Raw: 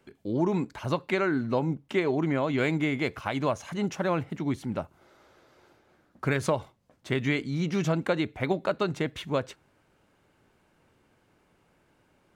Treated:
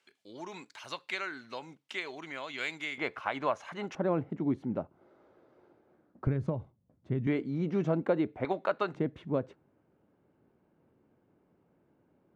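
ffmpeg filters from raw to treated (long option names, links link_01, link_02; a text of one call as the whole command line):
ffmpeg -i in.wav -af "asetnsamples=nb_out_samples=441:pad=0,asendcmd='2.98 bandpass f 1200;3.95 bandpass f 330;6.27 bandpass f 120;7.27 bandpass f 400;8.45 bandpass f 1100;8.95 bandpass f 260',bandpass=frequency=4400:width_type=q:width=0.68:csg=0" out.wav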